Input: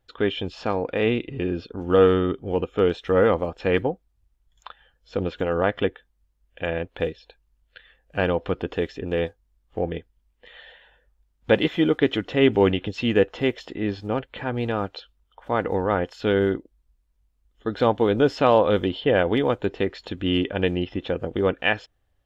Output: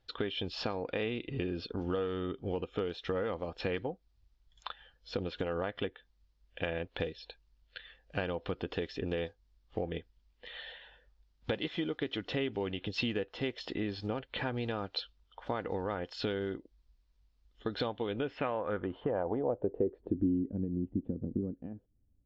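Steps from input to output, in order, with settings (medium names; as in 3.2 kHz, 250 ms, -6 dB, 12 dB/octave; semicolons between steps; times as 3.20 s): compression 12:1, threshold -29 dBFS, peak gain reduction 17.5 dB; low-pass sweep 4.7 kHz -> 240 Hz, 17.75–20.40 s; trim -2 dB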